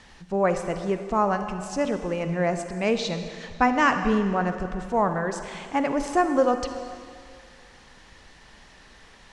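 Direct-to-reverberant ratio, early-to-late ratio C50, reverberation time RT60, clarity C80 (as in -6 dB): 7.5 dB, 8.0 dB, 2.2 s, 9.0 dB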